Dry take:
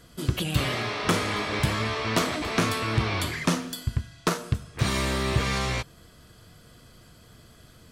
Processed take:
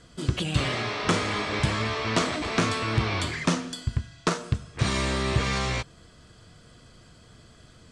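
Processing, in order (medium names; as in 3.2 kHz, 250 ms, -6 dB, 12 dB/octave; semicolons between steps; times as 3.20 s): steep low-pass 9 kHz 36 dB/octave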